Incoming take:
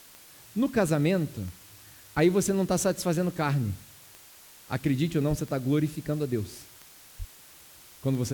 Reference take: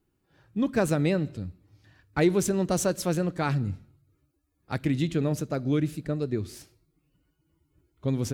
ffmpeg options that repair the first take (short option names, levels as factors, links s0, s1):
-filter_complex "[0:a]adeclick=t=4,asplit=3[s0][s1][s2];[s0]afade=t=out:st=5.29:d=0.02[s3];[s1]highpass=f=140:w=0.5412,highpass=f=140:w=1.3066,afade=t=in:st=5.29:d=0.02,afade=t=out:st=5.41:d=0.02[s4];[s2]afade=t=in:st=5.41:d=0.02[s5];[s3][s4][s5]amix=inputs=3:normalize=0,asplit=3[s6][s7][s8];[s6]afade=t=out:st=7.18:d=0.02[s9];[s7]highpass=f=140:w=0.5412,highpass=f=140:w=1.3066,afade=t=in:st=7.18:d=0.02,afade=t=out:st=7.3:d=0.02[s10];[s8]afade=t=in:st=7.3:d=0.02[s11];[s9][s10][s11]amix=inputs=3:normalize=0,afwtdn=0.0028"